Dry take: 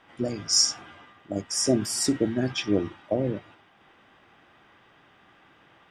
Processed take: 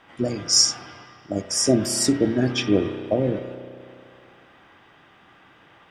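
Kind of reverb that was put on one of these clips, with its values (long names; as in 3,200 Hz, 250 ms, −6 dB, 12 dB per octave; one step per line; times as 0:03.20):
spring reverb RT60 2.3 s, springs 32 ms, chirp 75 ms, DRR 9.5 dB
level +4 dB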